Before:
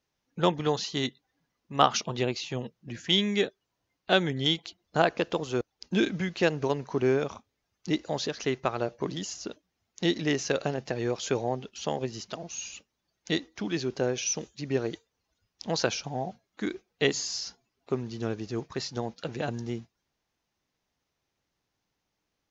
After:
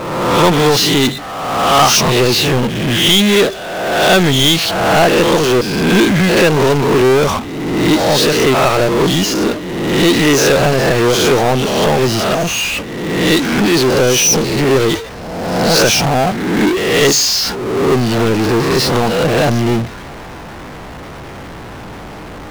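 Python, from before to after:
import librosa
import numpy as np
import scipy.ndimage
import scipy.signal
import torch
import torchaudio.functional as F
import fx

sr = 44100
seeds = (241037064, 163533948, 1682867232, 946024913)

y = fx.spec_swells(x, sr, rise_s=0.59)
y = fx.env_lowpass(y, sr, base_hz=1500.0, full_db=-19.5)
y = fx.power_curve(y, sr, exponent=0.35)
y = y * 10.0 ** (2.0 / 20.0)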